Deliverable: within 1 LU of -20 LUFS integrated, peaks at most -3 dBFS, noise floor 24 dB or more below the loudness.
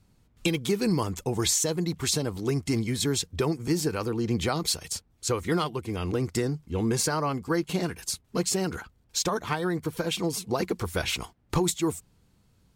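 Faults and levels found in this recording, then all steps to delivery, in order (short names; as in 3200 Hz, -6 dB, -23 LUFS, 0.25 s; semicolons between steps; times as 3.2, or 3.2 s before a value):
loudness -28.0 LUFS; peak -12.5 dBFS; loudness target -20.0 LUFS
-> gain +8 dB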